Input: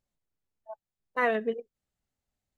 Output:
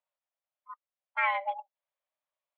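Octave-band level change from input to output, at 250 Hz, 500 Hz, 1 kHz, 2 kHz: below −40 dB, −12.5 dB, +2.5 dB, +0.5 dB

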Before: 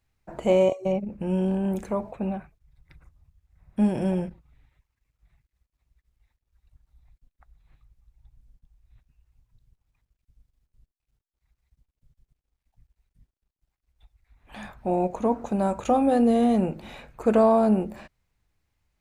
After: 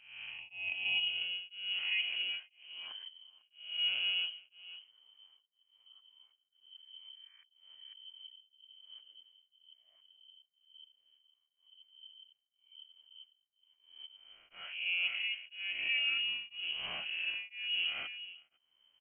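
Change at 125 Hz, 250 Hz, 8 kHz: below −35 dB, below −40 dB, can't be measured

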